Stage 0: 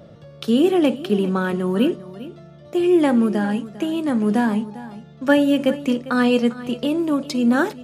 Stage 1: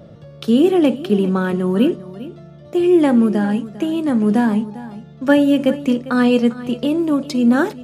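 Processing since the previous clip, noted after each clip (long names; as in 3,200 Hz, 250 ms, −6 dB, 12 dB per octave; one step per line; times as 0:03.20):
low-shelf EQ 480 Hz +4.5 dB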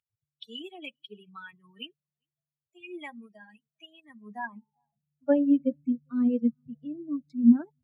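spectral dynamics exaggerated over time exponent 3
band-pass filter sweep 2,800 Hz → 220 Hz, 0:03.88–0:05.82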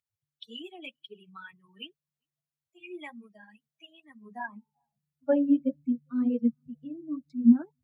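flanger 1.9 Hz, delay 0.5 ms, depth 6 ms, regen −44%
level +2.5 dB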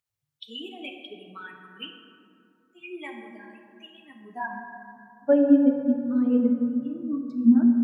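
dense smooth reverb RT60 2.6 s, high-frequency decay 0.4×, DRR 2.5 dB
level +3.5 dB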